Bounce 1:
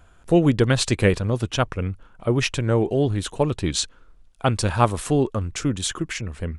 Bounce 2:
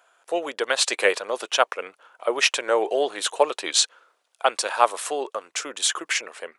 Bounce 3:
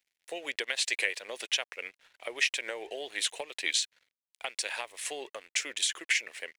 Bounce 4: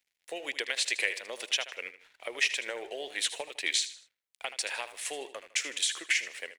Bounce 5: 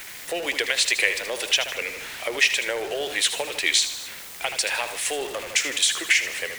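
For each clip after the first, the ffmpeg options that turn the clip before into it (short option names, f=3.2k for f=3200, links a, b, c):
-af "highpass=f=520:w=0.5412,highpass=f=520:w=1.3066,dynaudnorm=f=520:g=3:m=11.5dB,volume=-1dB"
-af "acompressor=threshold=-25dB:ratio=16,aeval=exprs='sgn(val(0))*max(abs(val(0))-0.00168,0)':c=same,highshelf=f=1.6k:t=q:w=3:g=7.5,volume=-8.5dB"
-af "aecho=1:1:78|156|234:0.224|0.0784|0.0274"
-af "aeval=exprs='val(0)+0.5*0.0126*sgn(val(0))':c=same,volume=7.5dB"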